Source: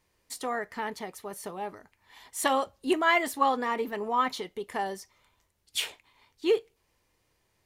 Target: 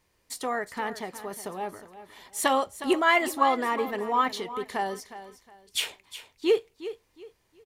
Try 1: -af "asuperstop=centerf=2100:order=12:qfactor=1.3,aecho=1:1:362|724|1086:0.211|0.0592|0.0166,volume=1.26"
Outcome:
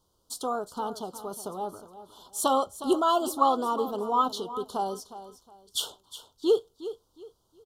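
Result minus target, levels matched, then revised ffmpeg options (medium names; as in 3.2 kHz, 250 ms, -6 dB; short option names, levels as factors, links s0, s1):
2 kHz band -20.0 dB
-af "aecho=1:1:362|724|1086:0.211|0.0592|0.0166,volume=1.26"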